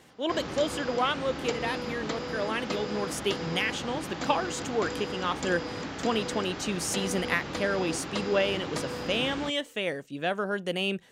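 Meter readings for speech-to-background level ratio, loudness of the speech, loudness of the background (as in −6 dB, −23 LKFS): 5.0 dB, −30.5 LKFS, −35.5 LKFS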